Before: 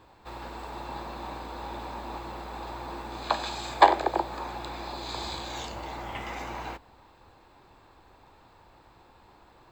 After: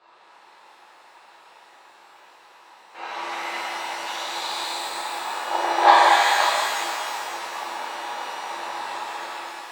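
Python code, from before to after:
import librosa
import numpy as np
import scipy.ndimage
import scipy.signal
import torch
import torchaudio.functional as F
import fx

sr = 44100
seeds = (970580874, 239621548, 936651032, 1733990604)

y = np.flip(x).copy()
y = fx.bandpass_edges(y, sr, low_hz=670.0, high_hz=5000.0)
y = fx.rev_shimmer(y, sr, seeds[0], rt60_s=2.3, semitones=12, shimmer_db=-8, drr_db=-9.5)
y = y * librosa.db_to_amplitude(-1.0)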